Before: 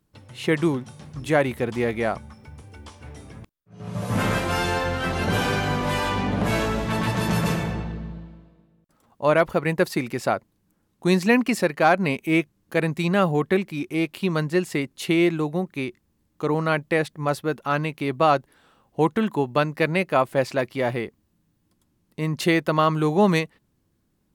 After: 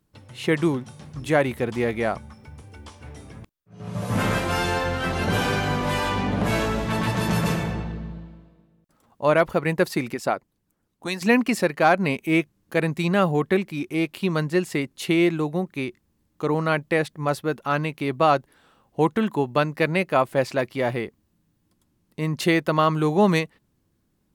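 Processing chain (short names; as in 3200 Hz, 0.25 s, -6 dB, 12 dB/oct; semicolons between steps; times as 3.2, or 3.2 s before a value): 10.14–11.22 harmonic-percussive split harmonic -14 dB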